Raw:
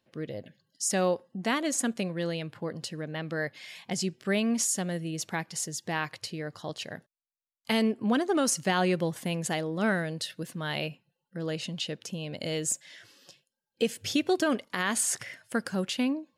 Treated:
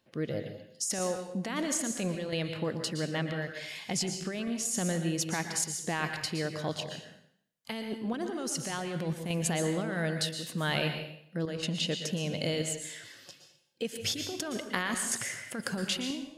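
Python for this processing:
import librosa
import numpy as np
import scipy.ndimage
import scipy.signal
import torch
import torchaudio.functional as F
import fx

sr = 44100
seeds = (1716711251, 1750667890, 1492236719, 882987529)

y = fx.chopper(x, sr, hz=0.86, depth_pct=65, duty_pct=85)
y = fx.over_compress(y, sr, threshold_db=-32.0, ratio=-1.0)
y = fx.rev_plate(y, sr, seeds[0], rt60_s=0.65, hf_ratio=1.0, predelay_ms=105, drr_db=6.0)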